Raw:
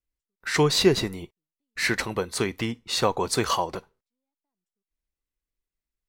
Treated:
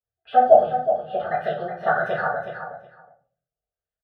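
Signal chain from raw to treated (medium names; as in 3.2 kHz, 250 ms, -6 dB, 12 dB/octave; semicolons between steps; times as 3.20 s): gliding tape speed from 173% -> 129%; high-pass 120 Hz 12 dB/octave; treble shelf 4.4 kHz -2.5 dB; static phaser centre 1.5 kHz, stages 8; spectral gate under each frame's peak -30 dB strong; LFO low-pass sine 1.6 Hz 760–2000 Hz; feedback delay 368 ms, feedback 16%, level -9 dB; simulated room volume 35 m³, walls mixed, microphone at 1.6 m; trim -7.5 dB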